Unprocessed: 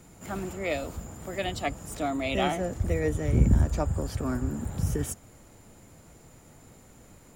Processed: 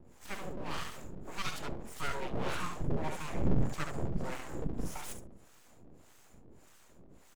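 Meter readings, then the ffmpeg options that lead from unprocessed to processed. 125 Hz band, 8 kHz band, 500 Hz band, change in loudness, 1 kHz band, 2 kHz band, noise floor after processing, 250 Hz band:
-10.5 dB, -7.5 dB, -10.0 dB, -9.5 dB, -6.0 dB, -5.5 dB, -59 dBFS, -8.5 dB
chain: -filter_complex "[0:a]asoftclip=type=hard:threshold=0.0841,highshelf=f=6300:g=-6,aecho=1:1:70|140|210|280|350|420:0.531|0.25|0.117|0.0551|0.0259|0.0122,acrossover=split=440[s0][s1];[s0]aeval=exprs='val(0)*(1-1/2+1/2*cos(2*PI*1.7*n/s))':c=same[s2];[s1]aeval=exprs='val(0)*(1-1/2-1/2*cos(2*PI*1.7*n/s))':c=same[s3];[s2][s3]amix=inputs=2:normalize=0,aeval=exprs='abs(val(0))':c=same"

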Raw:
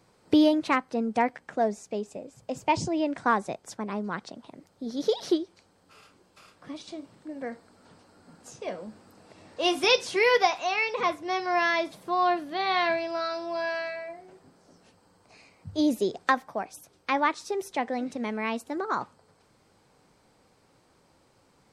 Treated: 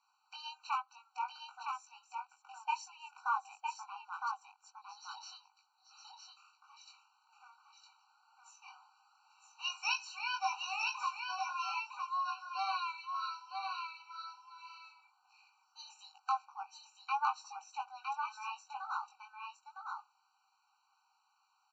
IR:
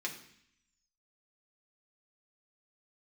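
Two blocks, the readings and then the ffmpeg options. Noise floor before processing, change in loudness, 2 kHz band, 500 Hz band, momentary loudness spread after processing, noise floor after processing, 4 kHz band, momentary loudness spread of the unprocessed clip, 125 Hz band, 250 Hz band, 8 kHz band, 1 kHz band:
-64 dBFS, -12.0 dB, -12.0 dB, under -40 dB, 19 LU, -77 dBFS, -10.5 dB, 18 LU, under -40 dB, under -40 dB, -9.0 dB, -8.5 dB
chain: -af "flanger=delay=19:depth=2.7:speed=1.8,aresample=16000,aresample=44100,aecho=1:1:960:0.596,afftfilt=real='re*eq(mod(floor(b*sr/1024/770),2),1)':imag='im*eq(mod(floor(b*sr/1024/770),2),1)':win_size=1024:overlap=0.75,volume=0.562"

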